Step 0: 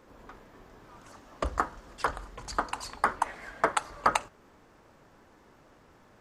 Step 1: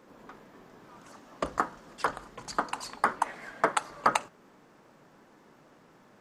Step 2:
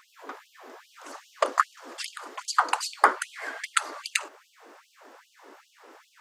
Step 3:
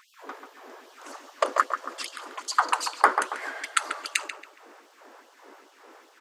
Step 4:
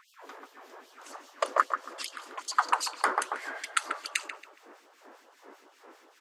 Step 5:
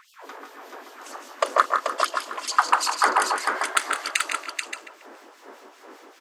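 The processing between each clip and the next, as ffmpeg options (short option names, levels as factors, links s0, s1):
-af "lowshelf=f=110:t=q:w=1.5:g=-12"
-filter_complex "[0:a]asplit=2[s0][s1];[s1]alimiter=limit=0.168:level=0:latency=1:release=299,volume=0.75[s2];[s0][s2]amix=inputs=2:normalize=0,afftfilt=real='re*gte(b*sr/1024,240*pow(2800/240,0.5+0.5*sin(2*PI*2.5*pts/sr)))':imag='im*gte(b*sr/1024,240*pow(2800/240,0.5+0.5*sin(2*PI*2.5*pts/sr)))':win_size=1024:overlap=0.75,volume=1.68"
-filter_complex "[0:a]asplit=2[s0][s1];[s1]adelay=139,lowpass=f=2100:p=1,volume=0.501,asplit=2[s2][s3];[s3]adelay=139,lowpass=f=2100:p=1,volume=0.42,asplit=2[s4][s5];[s5]adelay=139,lowpass=f=2100:p=1,volume=0.42,asplit=2[s6][s7];[s7]adelay=139,lowpass=f=2100:p=1,volume=0.42,asplit=2[s8][s9];[s9]adelay=139,lowpass=f=2100:p=1,volume=0.42[s10];[s0][s2][s4][s6][s8][s10]amix=inputs=6:normalize=0"
-filter_complex "[0:a]acrossover=split=2300[s0][s1];[s0]aeval=exprs='val(0)*(1-0.7/2+0.7/2*cos(2*PI*5.1*n/s))':c=same[s2];[s1]aeval=exprs='val(0)*(1-0.7/2-0.7/2*cos(2*PI*5.1*n/s))':c=same[s3];[s2][s3]amix=inputs=2:normalize=0"
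-filter_complex "[0:a]volume=3.16,asoftclip=hard,volume=0.316,asplit=2[s0][s1];[s1]aecho=0:1:44|160|187|434|576:0.112|0.422|0.133|0.562|0.266[s2];[s0][s2]amix=inputs=2:normalize=0,volume=2"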